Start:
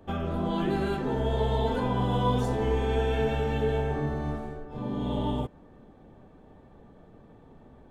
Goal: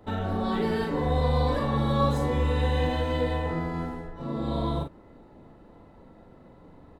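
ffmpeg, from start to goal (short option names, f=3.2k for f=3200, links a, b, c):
-filter_complex "[0:a]asetrate=49833,aresample=44100,asplit=2[a][b];[b]adelay=41,volume=-5dB[c];[a][c]amix=inputs=2:normalize=0"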